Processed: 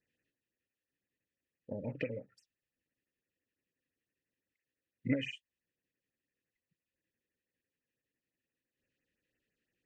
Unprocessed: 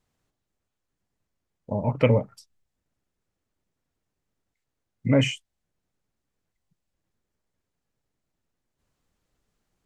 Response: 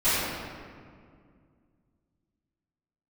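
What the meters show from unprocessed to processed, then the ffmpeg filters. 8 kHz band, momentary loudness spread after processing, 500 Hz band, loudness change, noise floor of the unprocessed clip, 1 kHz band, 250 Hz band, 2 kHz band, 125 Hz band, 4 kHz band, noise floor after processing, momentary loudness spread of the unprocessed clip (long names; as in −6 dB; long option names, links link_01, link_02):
below −20 dB, 11 LU, −17.0 dB, −15.0 dB, −82 dBFS, below −25 dB, −12.5 dB, −11.0 dB, −19.0 dB, −15.0 dB, below −85 dBFS, 14 LU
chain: -filter_complex "[0:a]acrossover=split=1200[link_01][link_02];[link_02]acontrast=71[link_03];[link_01][link_03]amix=inputs=2:normalize=0,asplit=3[link_04][link_05][link_06];[link_04]bandpass=frequency=530:width_type=q:width=8,volume=0dB[link_07];[link_05]bandpass=frequency=1840:width_type=q:width=8,volume=-6dB[link_08];[link_06]bandpass=frequency=2480:width_type=q:width=8,volume=-9dB[link_09];[link_07][link_08][link_09]amix=inputs=3:normalize=0,equalizer=frequency=230:width=1.1:gain=-12,acompressor=threshold=-39dB:ratio=4,lowshelf=frequency=380:width_type=q:width=3:gain=13,afftfilt=real='re*(1-between(b*sr/1024,740*pow(4400/740,0.5+0.5*sin(2*PI*5.9*pts/sr))/1.41,740*pow(4400/740,0.5+0.5*sin(2*PI*5.9*pts/sr))*1.41))':imag='im*(1-between(b*sr/1024,740*pow(4400/740,0.5+0.5*sin(2*PI*5.9*pts/sr))/1.41,740*pow(4400/740,0.5+0.5*sin(2*PI*5.9*pts/sr))*1.41))':win_size=1024:overlap=0.75,volume=5dB"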